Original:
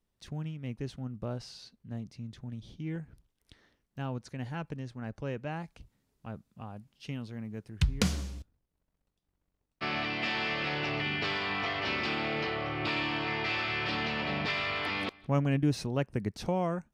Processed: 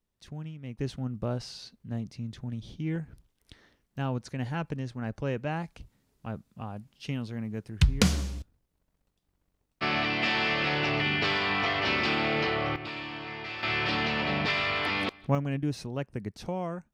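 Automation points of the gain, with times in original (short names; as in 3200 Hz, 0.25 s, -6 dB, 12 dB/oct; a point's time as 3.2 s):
-2 dB
from 0.79 s +5 dB
from 12.76 s -6 dB
from 13.63 s +4 dB
from 15.35 s -3 dB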